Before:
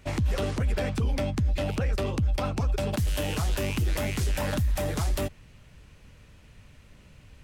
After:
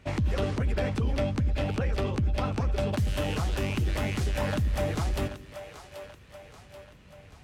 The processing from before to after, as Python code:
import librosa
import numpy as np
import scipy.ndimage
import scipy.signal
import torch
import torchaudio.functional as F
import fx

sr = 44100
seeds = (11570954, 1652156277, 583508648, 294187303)

y = scipy.signal.sosfilt(scipy.signal.butter(2, 48.0, 'highpass', fs=sr, output='sos'), x)
y = fx.high_shelf(y, sr, hz=6800.0, db=-11.0)
y = fx.echo_split(y, sr, split_hz=410.0, low_ms=90, high_ms=783, feedback_pct=52, wet_db=-11.5)